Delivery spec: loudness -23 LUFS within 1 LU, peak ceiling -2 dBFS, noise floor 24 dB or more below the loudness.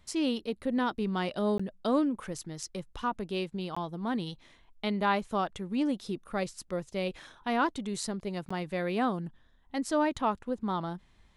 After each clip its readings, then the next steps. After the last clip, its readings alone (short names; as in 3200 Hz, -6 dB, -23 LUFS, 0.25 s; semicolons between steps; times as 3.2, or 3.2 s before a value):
dropouts 3; longest dropout 15 ms; loudness -32.5 LUFS; peak -14.5 dBFS; loudness target -23.0 LUFS
-> interpolate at 1.58/3.75/8.49, 15 ms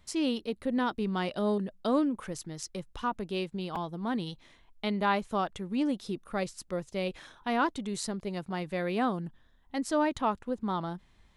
dropouts 0; loudness -32.5 LUFS; peak -14.5 dBFS; loudness target -23.0 LUFS
-> gain +9.5 dB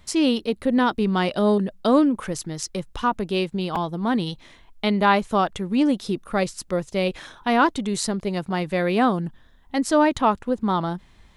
loudness -23.0 LUFS; peak -5.0 dBFS; noise floor -53 dBFS